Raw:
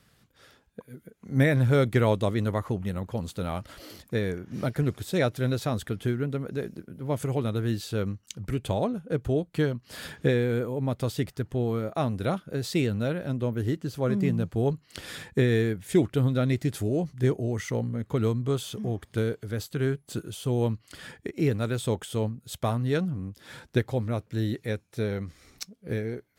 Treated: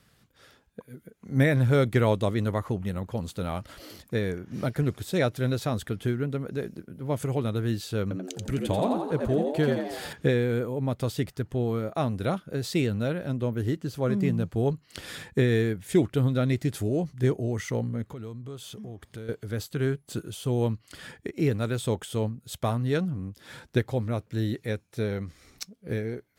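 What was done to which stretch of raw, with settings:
8.02–10.13 frequency-shifting echo 86 ms, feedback 54%, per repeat +85 Hz, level -4 dB
18.05–19.29 compressor 3:1, threshold -40 dBFS

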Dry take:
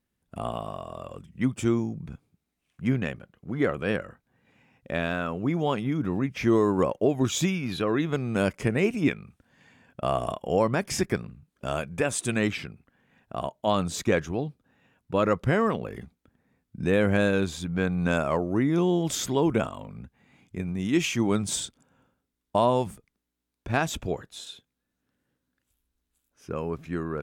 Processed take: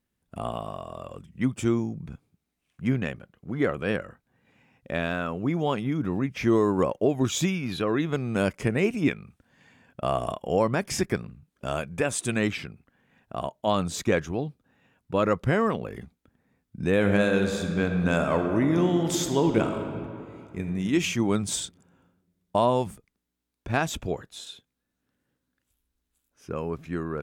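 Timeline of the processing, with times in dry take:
16.93–20.75 reverb throw, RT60 2.5 s, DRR 5 dB

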